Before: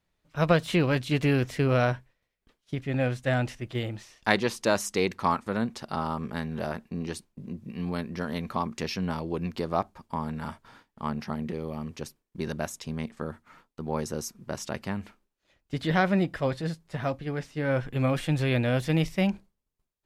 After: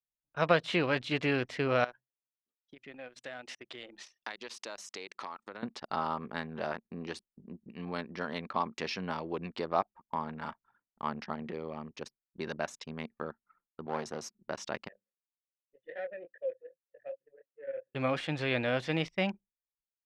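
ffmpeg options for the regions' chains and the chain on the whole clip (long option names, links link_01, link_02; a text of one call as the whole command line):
ffmpeg -i in.wav -filter_complex "[0:a]asettb=1/sr,asplit=3[link_01][link_02][link_03];[link_01]atrim=end=1.844[link_04];[link_02]atrim=start=1.84:end=5.63,asetpts=PTS-STARTPTS,afade=type=in:duration=0.004:curve=qsin,afade=type=out:start_time=3.786:duration=0.004:curve=qsin,highshelf=frequency=3500:gain=10,acompressor=threshold=-34dB:ratio=20:attack=3.2:release=140:knee=1:detection=peak,highpass=220[link_05];[link_03]atrim=start=5.626[link_06];[link_04][link_05]acrossfade=duration=0.004:curve1=hsin:curve2=qsin[link_07];[link_07][link_06]acrossfade=duration=0.004:curve1=qsin:curve2=hsin,asettb=1/sr,asplit=3[link_08][link_09][link_10];[link_08]atrim=end=13.864[link_11];[link_09]atrim=start=13.86:end=14.34,asetpts=PTS-STARTPTS,afade=type=in:duration=0.004:curve=qsin,afade=type=out:start_time=0.476:duration=0.004:curve=qsin,highpass=frequency=76:width=0.5412,highpass=frequency=76:width=1.3066,aeval=exprs='clip(val(0),-1,0.0237)':channel_layout=same[link_12];[link_10]atrim=start=14.336[link_13];[link_11][link_12]acrossfade=duration=0.004:curve1=hsin:curve2=qsin[link_14];[link_14][link_13]acrossfade=duration=0.004:curve1=qsin:curve2=hsin,asettb=1/sr,asplit=3[link_15][link_16][link_17];[link_15]atrim=end=14.884[link_18];[link_16]atrim=start=14.88:end=17.95,asetpts=PTS-STARTPTS,afade=type=in:duration=0.004:curve=qsin,afade=type=out:start_time=3.066:duration=0.004:curve=qsin,deesser=0.75,flanger=delay=17.5:depth=6.2:speed=2.6,asplit=3[link_19][link_20][link_21];[link_19]bandpass=frequency=530:width_type=q:width=8,volume=0dB[link_22];[link_20]bandpass=frequency=1840:width_type=q:width=8,volume=-6dB[link_23];[link_21]bandpass=frequency=2480:width_type=q:width=8,volume=-9dB[link_24];[link_22][link_23][link_24]amix=inputs=3:normalize=0[link_25];[link_17]atrim=start=17.946[link_26];[link_18][link_25]acrossfade=duration=0.004:curve1=hsin:curve2=qsin[link_27];[link_27][link_26]acrossfade=duration=0.004:curve1=qsin:curve2=hsin,highpass=frequency=520:poles=1,anlmdn=0.0631,lowpass=4500" out.wav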